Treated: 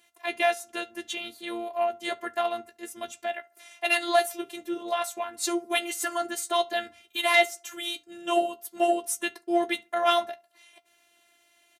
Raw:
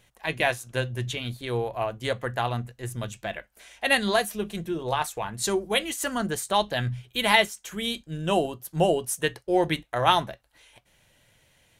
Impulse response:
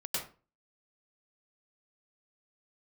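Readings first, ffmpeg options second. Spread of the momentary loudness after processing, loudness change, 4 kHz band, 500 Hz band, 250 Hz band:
13 LU, -1.5 dB, -2.5 dB, -1.0 dB, -3.0 dB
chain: -filter_complex "[0:a]acontrast=60,afftfilt=real='hypot(re,im)*cos(PI*b)':imag='0':win_size=512:overlap=0.75,highpass=230,asplit=2[a][b];[b]adelay=13,volume=-10.5dB[c];[a][c]amix=inputs=2:normalize=0,asplit=2[d][e];[e]adelay=71,lowpass=f=1.4k:p=1,volume=-23dB,asplit=2[f][g];[g]adelay=71,lowpass=f=1.4k:p=1,volume=0.38,asplit=2[h][i];[i]adelay=71,lowpass=f=1.4k:p=1,volume=0.38[j];[f][h][j]amix=inputs=3:normalize=0[k];[d][k]amix=inputs=2:normalize=0,volume=-4dB"

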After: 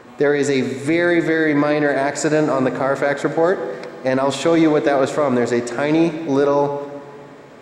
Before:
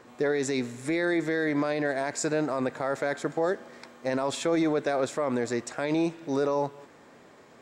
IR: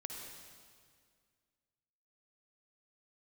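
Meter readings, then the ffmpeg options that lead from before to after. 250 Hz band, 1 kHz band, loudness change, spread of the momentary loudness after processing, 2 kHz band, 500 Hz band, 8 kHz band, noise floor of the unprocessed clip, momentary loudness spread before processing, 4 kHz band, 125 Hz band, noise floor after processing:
+10.5 dB, +10.5 dB, +10.5 dB, 6 LU, +10.5 dB, +10.5 dB, +6.0 dB, -54 dBFS, 5 LU, +8.5 dB, +11.0 dB, -40 dBFS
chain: -filter_complex "[0:a]asplit=2[a][b];[1:a]atrim=start_sample=2205,lowpass=4.7k[c];[b][c]afir=irnorm=-1:irlink=0,volume=-1dB[d];[a][d]amix=inputs=2:normalize=0,volume=6.5dB"

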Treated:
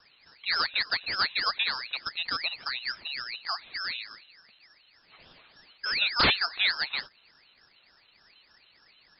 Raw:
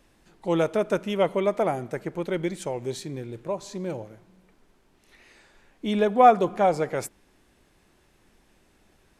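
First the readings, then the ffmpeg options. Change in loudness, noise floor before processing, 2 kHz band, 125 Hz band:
-2.5 dB, -63 dBFS, +9.0 dB, -13.0 dB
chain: -filter_complex "[0:a]asplit=2[a][b];[b]acompressor=threshold=-35dB:ratio=8,volume=3dB[c];[a][c]amix=inputs=2:normalize=0,aeval=exprs='(mod(2.51*val(0)+1,2)-1)/2.51':c=same,lowpass=f=3.1k:t=q:w=0.5098,lowpass=f=3.1k:t=q:w=0.6013,lowpass=f=3.1k:t=q:w=0.9,lowpass=f=3.1k:t=q:w=2.563,afreqshift=-3600,aeval=exprs='val(0)*sin(2*PI*1200*n/s+1200*0.6/3.4*sin(2*PI*3.4*n/s))':c=same,volume=-4dB"

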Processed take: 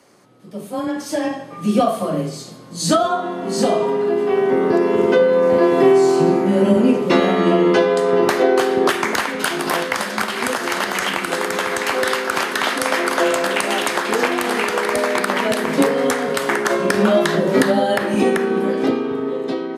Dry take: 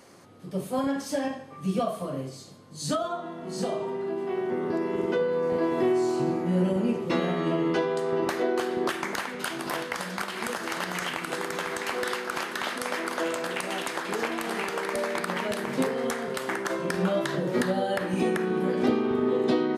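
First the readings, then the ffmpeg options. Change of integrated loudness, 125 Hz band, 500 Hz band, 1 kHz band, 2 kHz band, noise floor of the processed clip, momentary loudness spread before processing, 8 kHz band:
+10.5 dB, +6.5 dB, +11.0 dB, +11.0 dB, +11.0 dB, -35 dBFS, 7 LU, +11.0 dB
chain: -af "afreqshift=20,dynaudnorm=f=140:g=17:m=14dB,bandreject=f=201.9:t=h:w=4,bandreject=f=403.8:t=h:w=4,bandreject=f=605.7:t=h:w=4,bandreject=f=807.6:t=h:w=4,bandreject=f=1.0095k:t=h:w=4,bandreject=f=1.2114k:t=h:w=4,bandreject=f=1.4133k:t=h:w=4,bandreject=f=1.6152k:t=h:w=4,bandreject=f=1.8171k:t=h:w=4,bandreject=f=2.019k:t=h:w=4,bandreject=f=2.2209k:t=h:w=4,bandreject=f=2.4228k:t=h:w=4,bandreject=f=2.6247k:t=h:w=4,bandreject=f=2.8266k:t=h:w=4,bandreject=f=3.0285k:t=h:w=4,bandreject=f=3.2304k:t=h:w=4,bandreject=f=3.4323k:t=h:w=4,bandreject=f=3.6342k:t=h:w=4,bandreject=f=3.8361k:t=h:w=4,bandreject=f=4.038k:t=h:w=4,bandreject=f=4.2399k:t=h:w=4,bandreject=f=4.4418k:t=h:w=4,bandreject=f=4.6437k:t=h:w=4,bandreject=f=4.8456k:t=h:w=4,bandreject=f=5.0475k:t=h:w=4,bandreject=f=5.2494k:t=h:w=4,bandreject=f=5.4513k:t=h:w=4,bandreject=f=5.6532k:t=h:w=4,bandreject=f=5.8551k:t=h:w=4,bandreject=f=6.057k:t=h:w=4,bandreject=f=6.2589k:t=h:w=4"

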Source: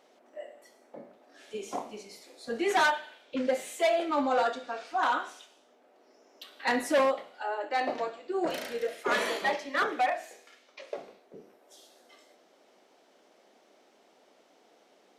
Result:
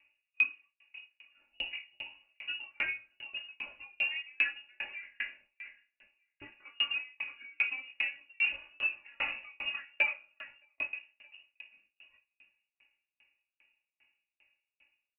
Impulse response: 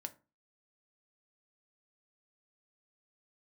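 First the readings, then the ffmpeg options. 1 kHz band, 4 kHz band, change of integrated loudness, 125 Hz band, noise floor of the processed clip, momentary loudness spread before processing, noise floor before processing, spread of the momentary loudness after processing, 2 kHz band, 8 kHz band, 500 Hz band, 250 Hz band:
-23.0 dB, +1.0 dB, -4.5 dB, n/a, under -85 dBFS, 18 LU, -64 dBFS, 21 LU, 0.0 dB, under -35 dB, -27.5 dB, under -25 dB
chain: -filter_complex "[0:a]acompressor=threshold=-32dB:ratio=16,equalizer=f=1.8k:t=o:w=0.74:g=-11.5,aecho=1:1:3.6:0.81,acontrast=28,agate=range=-13dB:threshold=-50dB:ratio=16:detection=peak,flanger=delay=17:depth=4.9:speed=0.48,acrusher=bits=4:mode=log:mix=0:aa=0.000001,aecho=1:1:624|1248:0.133|0.0333,asplit=2[a][b];[1:a]atrim=start_sample=2205,asetrate=30870,aresample=44100[c];[b][c]afir=irnorm=-1:irlink=0,volume=6dB[d];[a][d]amix=inputs=2:normalize=0,lowpass=f=2.6k:t=q:w=0.5098,lowpass=f=2.6k:t=q:w=0.6013,lowpass=f=2.6k:t=q:w=0.9,lowpass=f=2.6k:t=q:w=2.563,afreqshift=-3100,aeval=exprs='val(0)*pow(10,-39*if(lt(mod(2.5*n/s,1),2*abs(2.5)/1000),1-mod(2.5*n/s,1)/(2*abs(2.5)/1000),(mod(2.5*n/s,1)-2*abs(2.5)/1000)/(1-2*abs(2.5)/1000))/20)':c=same"

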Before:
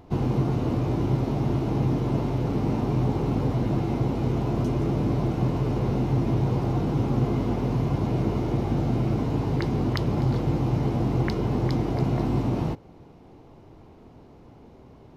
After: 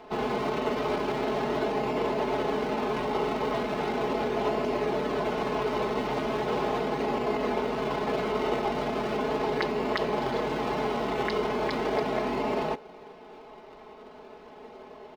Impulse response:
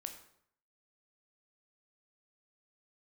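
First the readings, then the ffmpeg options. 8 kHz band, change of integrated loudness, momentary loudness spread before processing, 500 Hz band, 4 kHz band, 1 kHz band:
n/a, -3.5 dB, 1 LU, +3.5 dB, +5.0 dB, +5.0 dB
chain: -filter_complex "[0:a]asplit=2[a][b];[b]acrusher=samples=36:mix=1:aa=0.000001:lfo=1:lforange=36:lforate=0.38,volume=-10dB[c];[a][c]amix=inputs=2:normalize=0,aecho=1:1:4.7:0.94,alimiter=limit=-17.5dB:level=0:latency=1:release=39,acrossover=split=380 4700:gain=0.0794 1 0.158[d][e][f];[d][e][f]amix=inputs=3:normalize=0,volume=5.5dB"

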